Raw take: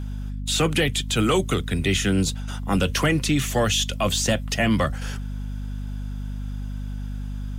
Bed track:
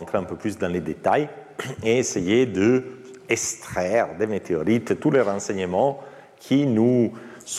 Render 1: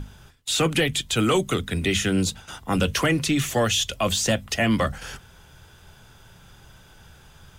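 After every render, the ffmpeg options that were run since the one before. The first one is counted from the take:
-af "bandreject=f=50:t=h:w=6,bandreject=f=100:t=h:w=6,bandreject=f=150:t=h:w=6,bandreject=f=200:t=h:w=6,bandreject=f=250:t=h:w=6"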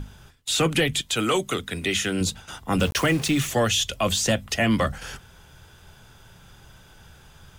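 -filter_complex "[0:a]asettb=1/sr,asplit=3[s0][s1][s2];[s0]atrim=end=1.014[s3];[s1]atrim=start=1.01:end=2.21,asetpts=PTS-STARTPTS,afade=t=in:d=0.004:c=qsin,afade=t=out:st=1.196:d=0.004:c=qsin,lowshelf=f=220:g=-10[s4];[s2]atrim=start=2.206[s5];[s3][s4]acrossfade=d=0.004:c1=hsin:c2=qsin[s6];[s6][s5]acrossfade=d=0.004:c1=qsin:c2=hsin,asettb=1/sr,asplit=3[s7][s8][s9];[s7]atrim=end=2.794[s10];[s8]atrim=start=2.79:end=3.48,asetpts=PTS-STARTPTS,afade=t=in:d=0.004:c=qsin,afade=t=out:st=0.686:d=0.004:c=qsin,aeval=exprs='val(0)*gte(abs(val(0)),0.0266)':c=same[s11];[s9]atrim=start=3.476[s12];[s10][s11]acrossfade=d=0.004:c1=hsin:c2=qsin[s13];[s13][s12]acrossfade=d=0.004:c1=qsin:c2=hsin"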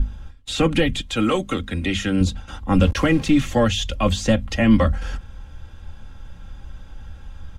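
-af "aemphasis=mode=reproduction:type=bsi,aecho=1:1:3.7:0.6"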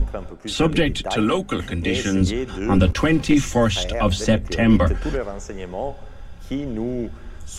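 -filter_complex "[1:a]volume=0.422[s0];[0:a][s0]amix=inputs=2:normalize=0"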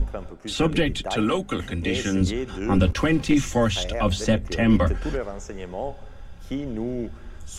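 -af "volume=0.708"

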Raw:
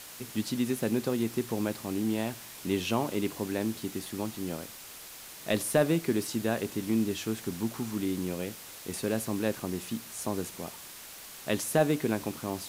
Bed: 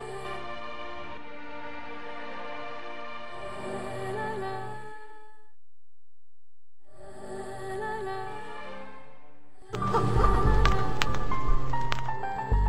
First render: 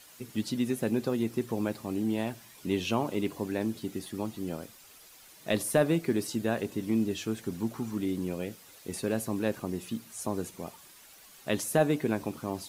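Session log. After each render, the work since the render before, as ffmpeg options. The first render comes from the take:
-af "afftdn=nr=10:nf=-46"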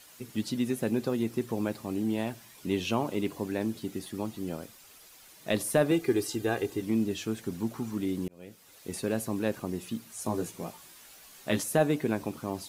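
-filter_complex "[0:a]asettb=1/sr,asplit=3[s0][s1][s2];[s0]atrim=end=5.914[s3];[s1]atrim=start=5.91:end=6.82,asetpts=PTS-STARTPTS,afade=t=in:d=0.004:c=qsin,afade=t=out:st=0.906:d=0.004:c=qsin,aecho=1:1:2.5:0.65,atrim=end_sample=40131[s4];[s2]atrim=start=6.816[s5];[s3][s4]acrossfade=d=0.004:c1=hsin:c2=qsin[s6];[s6][s5]acrossfade=d=0.004:c1=qsin:c2=hsin,asettb=1/sr,asplit=3[s7][s8][s9];[s7]atrim=end=10.244[s10];[s8]atrim=start=10.24:end=11.63,asetpts=PTS-STARTPTS,afade=t=in:d=0.004:c=qsin,afade=t=out:st=1.386:d=0.004:c=qsin,asplit=2[s11][s12];[s12]adelay=18,volume=0.668[s13];[s11][s13]amix=inputs=2:normalize=0,atrim=end_sample=61299[s14];[s9]atrim=start=11.626[s15];[s10][s14]acrossfade=d=0.004:c1=hsin:c2=qsin[s16];[s16][s15]acrossfade=d=0.004:c1=qsin:c2=hsin,asplit=2[s17][s18];[s17]atrim=end=8.28,asetpts=PTS-STARTPTS,afade=t=out:st=8.276:d=0.004:c=hsin[s19];[s18]atrim=start=8.28,asetpts=PTS-STARTPTS,afade=t=in:d=0.59[s20];[s19][s20]concat=n=2:v=0:a=1"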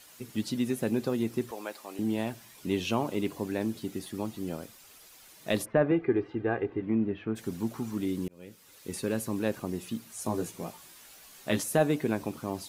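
-filter_complex "[0:a]asettb=1/sr,asplit=3[s0][s1][s2];[s0]atrim=end=1.514[s3];[s1]atrim=start=1.51:end=1.99,asetpts=PTS-STARTPTS,afade=t=in:d=0.004:c=qsin,afade=t=out:st=0.476:d=0.004:c=qsin,highpass=600[s4];[s2]atrim=start=1.986[s5];[s3][s4]acrossfade=d=0.004:c1=hsin:c2=qsin[s6];[s6][s5]acrossfade=d=0.004:c1=qsin:c2=hsin,asplit=3[s7][s8][s9];[s7]afade=t=out:st=5.64:d=0.02[s10];[s8]lowpass=f=2200:w=0.5412,lowpass=f=2200:w=1.3066,afade=t=in:st=5.64:d=0.02,afade=t=out:st=7.35:d=0.02[s11];[s9]afade=t=in:st=7.35:d=0.02[s12];[s10][s11][s12]amix=inputs=3:normalize=0,asettb=1/sr,asplit=3[s13][s14][s15];[s13]atrim=end=8.084[s16];[s14]atrim=start=8.08:end=9.34,asetpts=PTS-STARTPTS,afade=t=in:d=0.004:c=qsin,afade=t=out:st=1.256:d=0.004:c=qsin,equalizer=f=700:w=6.9:g=-10[s17];[s15]atrim=start=9.336[s18];[s16][s17]acrossfade=d=0.004:c1=hsin:c2=qsin[s19];[s19][s18]acrossfade=d=0.004:c1=qsin:c2=hsin"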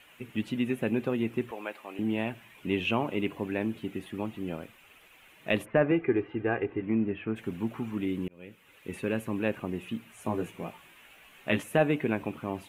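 -af "highshelf=f=3600:t=q:w=3:g=-10.5"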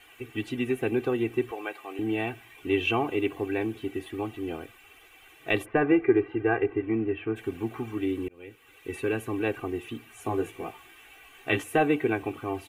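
-af "aecho=1:1:2.6:0.97"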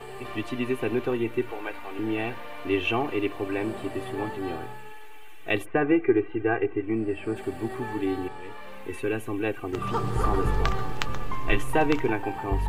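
-filter_complex "[1:a]volume=0.75[s0];[0:a][s0]amix=inputs=2:normalize=0"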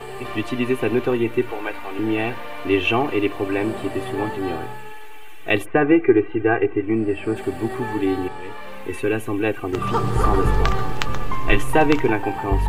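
-af "volume=2.11,alimiter=limit=0.891:level=0:latency=1"

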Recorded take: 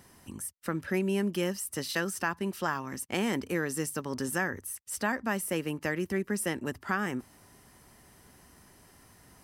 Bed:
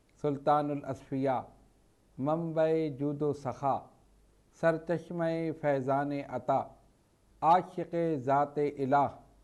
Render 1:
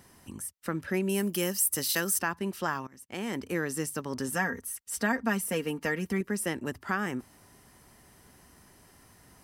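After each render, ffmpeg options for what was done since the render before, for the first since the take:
-filter_complex "[0:a]asettb=1/sr,asplit=3[s0][s1][s2];[s0]atrim=end=1.094[s3];[s1]atrim=start=1.09:end=2.19,asetpts=PTS-STARTPTS,afade=t=in:d=0.004:c=qsin,afade=t=out:st=1.096:d=0.004:c=qsin,aemphasis=mode=production:type=50fm[s4];[s2]atrim=start=2.186[s5];[s3][s4]acrossfade=d=0.004:c1=hsin:c2=qsin[s6];[s6][s5]acrossfade=d=0.004:c1=qsin:c2=hsin,asettb=1/sr,asplit=3[s7][s8][s9];[s7]atrim=end=4.354[s10];[s8]atrim=start=4.35:end=6.21,asetpts=PTS-STARTPTS,afade=t=in:d=0.004:c=qsin,afade=t=out:st=1.856:d=0.004:c=qsin,aecho=1:1:4.3:0.67,atrim=end_sample=82026[s11];[s9]atrim=start=6.206[s12];[s10][s11]acrossfade=d=0.004:c1=hsin:c2=qsin[s13];[s13][s12]acrossfade=d=0.004:c1=qsin:c2=hsin,asplit=2[s14][s15];[s14]atrim=end=2.87,asetpts=PTS-STARTPTS,afade=t=out:st=2.866:d=0.004:c=hsin:silence=0.0794328[s16];[s15]atrim=start=2.87,asetpts=PTS-STARTPTS,afade=t=in:d=0.71:silence=0.0794328[s17];[s16][s17]concat=n=2:v=0:a=1"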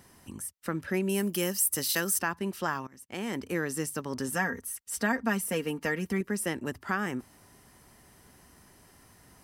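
-af anull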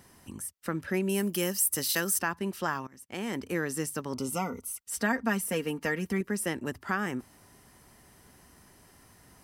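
-filter_complex "[0:a]asettb=1/sr,asplit=3[s0][s1][s2];[s0]atrim=end=4.134[s3];[s1]atrim=start=4.13:end=4.8,asetpts=PTS-STARTPTS,afade=t=in:d=0.004:c=qsin,afade=t=out:st=0.666:d=0.004:c=qsin,asuperstop=centerf=1700:order=20:qfactor=3.6[s4];[s2]atrim=start=4.796[s5];[s3][s4]acrossfade=d=0.004:c1=hsin:c2=qsin[s6];[s6][s5]acrossfade=d=0.004:c1=qsin:c2=hsin"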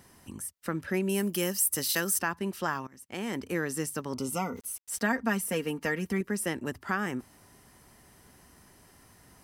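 -filter_complex "[0:a]asettb=1/sr,asplit=3[s0][s1][s2];[s0]atrim=end=4.564[s3];[s1]atrim=start=4.56:end=5.14,asetpts=PTS-STARTPTS,afade=t=in:d=0.004:c=qsin,afade=t=out:st=0.576:d=0.004:c=qsin,aeval=exprs='val(0)*gte(abs(val(0)),0.00335)':c=same[s4];[s2]atrim=start=5.136[s5];[s3][s4]acrossfade=d=0.004:c1=hsin:c2=qsin[s6];[s6][s5]acrossfade=d=0.004:c1=qsin:c2=hsin"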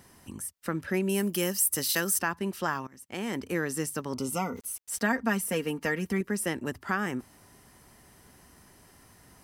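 -af "volume=1.12"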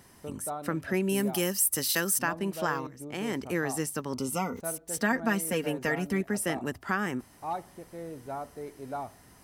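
-filter_complex "[1:a]volume=0.316[s0];[0:a][s0]amix=inputs=2:normalize=0"

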